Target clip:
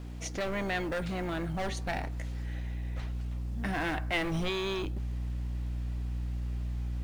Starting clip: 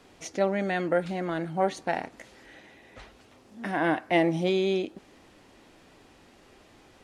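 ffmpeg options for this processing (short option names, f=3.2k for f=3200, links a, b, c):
-filter_complex "[0:a]aeval=exprs='val(0)+0.01*(sin(2*PI*60*n/s)+sin(2*PI*2*60*n/s)/2+sin(2*PI*3*60*n/s)/3+sin(2*PI*4*60*n/s)/4+sin(2*PI*5*60*n/s)/5)':c=same,acrossover=split=1700[a][b];[a]volume=31dB,asoftclip=hard,volume=-31dB[c];[c][b]amix=inputs=2:normalize=0,acrusher=bits=8:mode=log:mix=0:aa=0.000001,asubboost=boost=2.5:cutoff=170"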